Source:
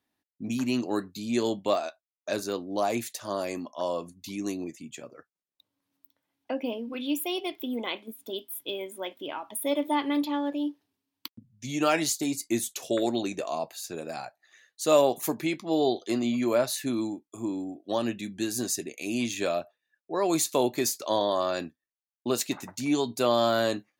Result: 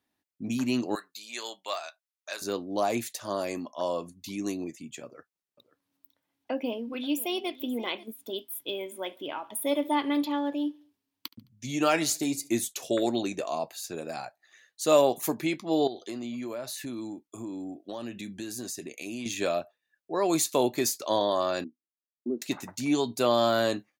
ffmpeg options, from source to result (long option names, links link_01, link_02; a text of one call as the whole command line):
ffmpeg -i in.wav -filter_complex "[0:a]asettb=1/sr,asplit=3[link_01][link_02][link_03];[link_01]atrim=end=0.954[link_04];[link_02]atrim=start=0.95:end=2.42,asetpts=PTS-STARTPTS,afade=type=in:duration=0.004:curve=qsin,afade=type=out:start_time=1.466:duration=0.004:curve=qsin,highpass=1100[link_05];[link_03]atrim=start=2.416[link_06];[link_04][link_05]acrossfade=duration=0.004:curve1=hsin:curve2=qsin[link_07];[link_07][link_06]acrossfade=duration=0.004:curve1=qsin:curve2=hsin,asettb=1/sr,asplit=3[link_08][link_09][link_10];[link_08]atrim=end=5.044[link_11];[link_09]atrim=start=5.04:end=8.05,asetpts=PTS-STARTPTS,afade=type=in:duration=0.004:curve=qsin,afade=type=out:start_time=3.006:duration=0.004:curve=qsin,aecho=1:1:533:0.119,atrim=end_sample=132741[link_12];[link_10]atrim=start=8.046[link_13];[link_11][link_12]acrossfade=duration=0.004:curve1=hsin:curve2=qsin[link_14];[link_14][link_13]acrossfade=duration=0.004:curve1=qsin:curve2=hsin,asplit=3[link_15][link_16][link_17];[link_15]afade=type=out:start_time=8.76:duration=0.02[link_18];[link_16]aecho=1:1:71|142|213:0.0708|0.0354|0.0177,afade=type=in:start_time=8.76:duration=0.02,afade=type=out:start_time=12.65:duration=0.02[link_19];[link_17]afade=type=in:start_time=12.65:duration=0.02[link_20];[link_18][link_19][link_20]amix=inputs=3:normalize=0,asettb=1/sr,asplit=3[link_21][link_22][link_23];[link_21]atrim=end=15.874[link_24];[link_22]atrim=start=15.87:end=19.26,asetpts=PTS-STARTPTS,afade=type=in:duration=0.004:curve=qsin,afade=type=out:start_time=3.386:duration=0.004:curve=qsin,acompressor=threshold=-34dB:ratio=4:attack=3.2:release=140:knee=1:detection=peak[link_25];[link_23]atrim=start=19.256[link_26];[link_24][link_25]acrossfade=duration=0.004:curve1=hsin:curve2=qsin[link_27];[link_27][link_26]acrossfade=duration=0.004:curve1=qsin:curve2=hsin,asettb=1/sr,asplit=3[link_28][link_29][link_30];[link_28]atrim=end=21.644[link_31];[link_29]atrim=start=21.64:end=22.42,asetpts=PTS-STARTPTS,afade=type=in:duration=0.004:curve=qsin,afade=type=out:start_time=0.776:duration=0.004:curve=qsin,asuperpass=centerf=280:order=4:qfactor=1.7[link_32];[link_30]atrim=start=22.416[link_33];[link_31][link_32]acrossfade=duration=0.004:curve1=hsin:curve2=qsin[link_34];[link_34][link_33]acrossfade=duration=0.004:curve1=qsin:curve2=hsin" out.wav